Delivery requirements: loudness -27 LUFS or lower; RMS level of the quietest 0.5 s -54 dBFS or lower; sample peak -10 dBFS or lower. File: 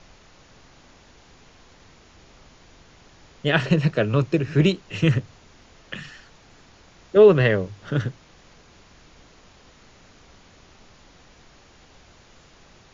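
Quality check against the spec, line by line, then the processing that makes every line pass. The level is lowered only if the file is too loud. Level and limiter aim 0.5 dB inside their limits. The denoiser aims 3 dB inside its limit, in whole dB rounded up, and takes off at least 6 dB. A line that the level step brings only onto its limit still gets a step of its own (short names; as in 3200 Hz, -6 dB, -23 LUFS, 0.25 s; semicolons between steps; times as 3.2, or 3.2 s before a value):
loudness -20.5 LUFS: fail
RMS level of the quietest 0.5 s -52 dBFS: fail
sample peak -3.0 dBFS: fail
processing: gain -7 dB; limiter -10.5 dBFS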